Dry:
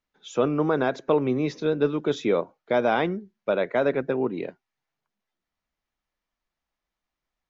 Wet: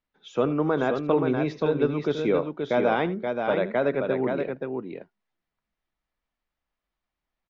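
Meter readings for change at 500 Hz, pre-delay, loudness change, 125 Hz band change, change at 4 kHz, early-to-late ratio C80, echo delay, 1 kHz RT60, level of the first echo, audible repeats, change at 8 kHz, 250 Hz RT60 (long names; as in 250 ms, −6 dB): 0.0 dB, no reverb audible, −0.5 dB, +1.0 dB, −2.0 dB, no reverb audible, 78 ms, no reverb audible, −16.5 dB, 2, can't be measured, no reverb audible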